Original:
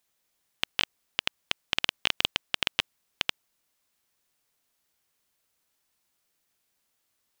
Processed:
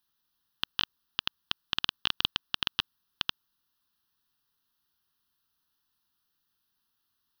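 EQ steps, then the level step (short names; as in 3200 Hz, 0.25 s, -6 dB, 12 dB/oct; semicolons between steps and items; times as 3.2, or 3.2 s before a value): fixed phaser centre 2200 Hz, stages 6; 0.0 dB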